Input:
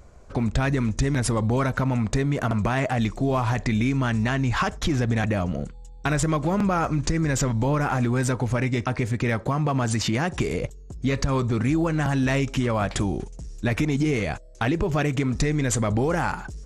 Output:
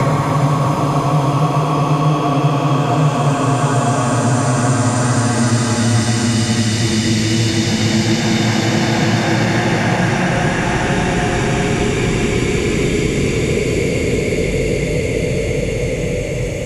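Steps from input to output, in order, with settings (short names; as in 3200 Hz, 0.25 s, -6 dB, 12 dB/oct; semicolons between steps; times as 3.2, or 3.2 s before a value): Paulstretch 13×, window 0.50 s, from 9.47; three-band squash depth 70%; gain +8.5 dB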